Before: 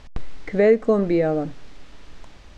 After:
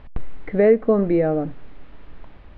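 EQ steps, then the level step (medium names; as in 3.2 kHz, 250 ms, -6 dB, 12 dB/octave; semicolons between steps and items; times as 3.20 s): distance through air 450 m; +2.0 dB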